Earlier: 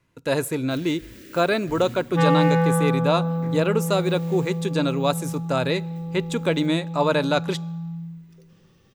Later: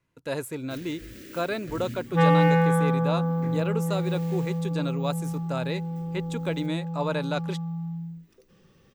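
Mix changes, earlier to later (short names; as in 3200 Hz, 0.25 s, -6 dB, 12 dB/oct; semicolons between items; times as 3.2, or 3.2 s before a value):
speech -8.0 dB; reverb: off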